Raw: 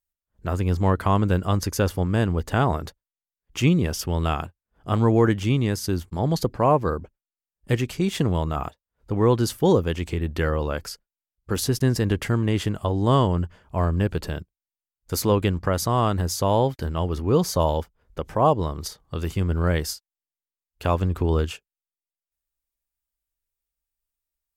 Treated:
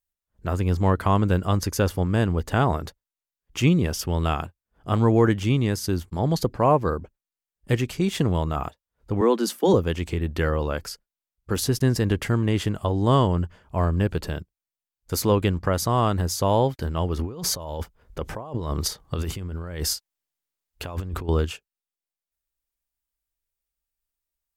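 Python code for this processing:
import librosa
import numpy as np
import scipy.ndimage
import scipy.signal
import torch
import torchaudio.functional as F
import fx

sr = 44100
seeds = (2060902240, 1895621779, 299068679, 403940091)

y = fx.steep_highpass(x, sr, hz=180.0, slope=96, at=(9.21, 9.74))
y = fx.over_compress(y, sr, threshold_db=-30.0, ratio=-1.0, at=(17.19, 21.29))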